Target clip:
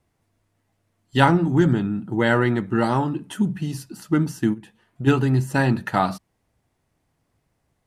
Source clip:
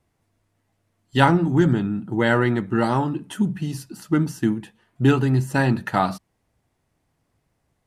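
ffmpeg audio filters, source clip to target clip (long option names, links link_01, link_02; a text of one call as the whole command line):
ffmpeg -i in.wav -filter_complex "[0:a]asplit=3[link_01][link_02][link_03];[link_01]afade=type=out:start_time=4.53:duration=0.02[link_04];[link_02]acompressor=threshold=-29dB:ratio=6,afade=type=in:start_time=4.53:duration=0.02,afade=type=out:start_time=5.06:duration=0.02[link_05];[link_03]afade=type=in:start_time=5.06:duration=0.02[link_06];[link_04][link_05][link_06]amix=inputs=3:normalize=0" out.wav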